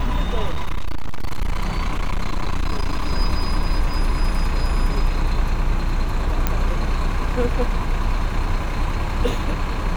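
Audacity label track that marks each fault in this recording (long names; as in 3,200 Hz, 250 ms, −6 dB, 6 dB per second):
0.500000	3.120000	clipping −16 dBFS
6.470000	6.470000	click −5 dBFS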